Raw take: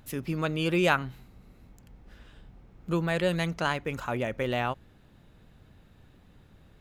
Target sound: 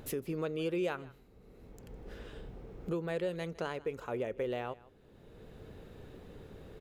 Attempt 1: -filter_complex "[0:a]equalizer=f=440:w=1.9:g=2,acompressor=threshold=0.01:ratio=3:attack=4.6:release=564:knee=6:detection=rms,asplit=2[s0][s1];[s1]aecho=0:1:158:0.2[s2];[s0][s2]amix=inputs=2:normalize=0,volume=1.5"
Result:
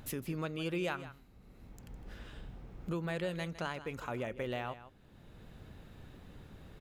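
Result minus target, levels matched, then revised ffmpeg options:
echo-to-direct +6.5 dB; 500 Hz band -2.5 dB
-filter_complex "[0:a]equalizer=f=440:w=1.9:g=13.5,acompressor=threshold=0.01:ratio=3:attack=4.6:release=564:knee=6:detection=rms,asplit=2[s0][s1];[s1]aecho=0:1:158:0.0944[s2];[s0][s2]amix=inputs=2:normalize=0,volume=1.5"

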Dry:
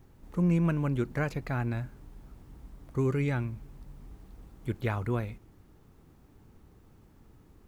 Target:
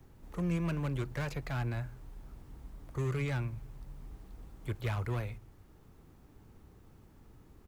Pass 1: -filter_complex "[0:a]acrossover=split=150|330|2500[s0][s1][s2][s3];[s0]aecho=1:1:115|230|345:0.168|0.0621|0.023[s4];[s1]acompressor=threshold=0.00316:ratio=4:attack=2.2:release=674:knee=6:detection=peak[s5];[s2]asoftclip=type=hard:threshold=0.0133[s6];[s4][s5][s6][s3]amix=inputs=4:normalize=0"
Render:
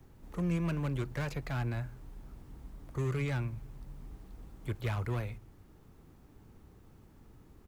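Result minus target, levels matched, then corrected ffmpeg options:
compression: peak gain reduction -7.5 dB
-filter_complex "[0:a]acrossover=split=150|330|2500[s0][s1][s2][s3];[s0]aecho=1:1:115|230|345:0.168|0.0621|0.023[s4];[s1]acompressor=threshold=0.001:ratio=4:attack=2.2:release=674:knee=6:detection=peak[s5];[s2]asoftclip=type=hard:threshold=0.0133[s6];[s4][s5][s6][s3]amix=inputs=4:normalize=0"

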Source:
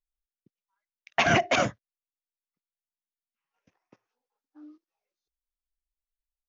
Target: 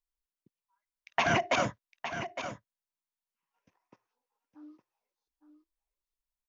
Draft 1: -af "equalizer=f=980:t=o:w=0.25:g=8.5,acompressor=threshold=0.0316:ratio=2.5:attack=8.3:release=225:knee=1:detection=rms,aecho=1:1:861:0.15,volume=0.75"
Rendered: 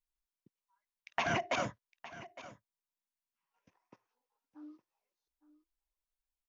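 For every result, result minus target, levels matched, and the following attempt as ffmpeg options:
compression: peak gain reduction +6 dB; echo-to-direct -6.5 dB
-af "equalizer=f=980:t=o:w=0.25:g=8.5,acompressor=threshold=0.1:ratio=2.5:attack=8.3:release=225:knee=1:detection=rms,aecho=1:1:861:0.15,volume=0.75"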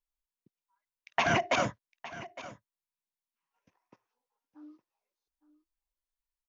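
echo-to-direct -6.5 dB
-af "equalizer=f=980:t=o:w=0.25:g=8.5,acompressor=threshold=0.1:ratio=2.5:attack=8.3:release=225:knee=1:detection=rms,aecho=1:1:861:0.316,volume=0.75"

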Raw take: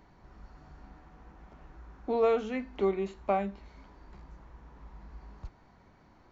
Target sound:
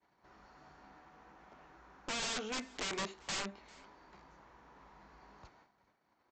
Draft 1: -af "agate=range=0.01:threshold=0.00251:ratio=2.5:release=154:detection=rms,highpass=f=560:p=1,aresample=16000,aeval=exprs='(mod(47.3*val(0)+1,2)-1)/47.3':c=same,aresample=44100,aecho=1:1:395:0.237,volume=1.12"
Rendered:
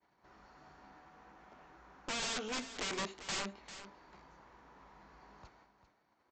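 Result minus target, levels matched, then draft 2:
echo-to-direct +11.5 dB
-af "agate=range=0.01:threshold=0.00251:ratio=2.5:release=154:detection=rms,highpass=f=560:p=1,aresample=16000,aeval=exprs='(mod(47.3*val(0)+1,2)-1)/47.3':c=same,aresample=44100,aecho=1:1:395:0.0631,volume=1.12"

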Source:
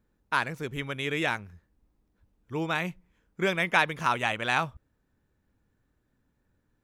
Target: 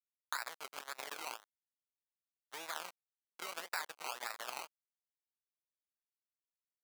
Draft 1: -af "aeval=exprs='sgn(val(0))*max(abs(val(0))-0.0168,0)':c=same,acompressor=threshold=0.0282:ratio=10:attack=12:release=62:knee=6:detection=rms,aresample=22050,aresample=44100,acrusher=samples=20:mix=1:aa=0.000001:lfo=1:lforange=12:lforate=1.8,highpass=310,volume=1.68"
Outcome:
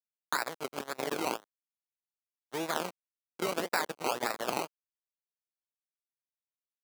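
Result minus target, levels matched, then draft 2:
250 Hz band +14.0 dB; compression: peak gain reduction -7 dB
-af "aeval=exprs='sgn(val(0))*max(abs(val(0))-0.0168,0)':c=same,acompressor=threshold=0.0112:ratio=10:attack=12:release=62:knee=6:detection=rms,aresample=22050,aresample=44100,acrusher=samples=20:mix=1:aa=0.000001:lfo=1:lforange=12:lforate=1.8,highpass=1000,volume=1.68"

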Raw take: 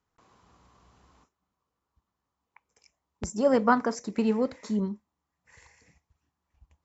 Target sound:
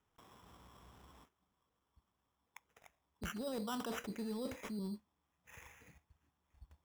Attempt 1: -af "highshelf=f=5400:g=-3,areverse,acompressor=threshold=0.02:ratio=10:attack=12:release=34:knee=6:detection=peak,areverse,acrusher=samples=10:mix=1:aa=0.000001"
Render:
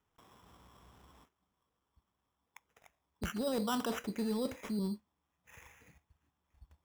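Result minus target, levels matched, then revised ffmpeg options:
compression: peak gain reduction -7 dB
-af "highshelf=f=5400:g=-3,areverse,acompressor=threshold=0.00841:ratio=10:attack=12:release=34:knee=6:detection=peak,areverse,acrusher=samples=10:mix=1:aa=0.000001"

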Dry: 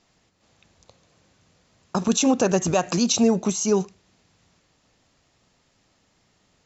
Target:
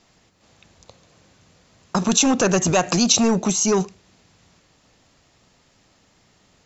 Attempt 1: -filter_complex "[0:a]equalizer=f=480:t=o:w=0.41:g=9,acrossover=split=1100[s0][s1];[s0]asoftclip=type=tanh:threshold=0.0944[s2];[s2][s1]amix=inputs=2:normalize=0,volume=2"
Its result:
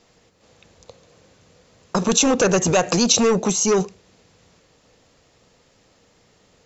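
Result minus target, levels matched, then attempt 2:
500 Hz band +2.5 dB
-filter_complex "[0:a]acrossover=split=1100[s0][s1];[s0]asoftclip=type=tanh:threshold=0.0944[s2];[s2][s1]amix=inputs=2:normalize=0,volume=2"

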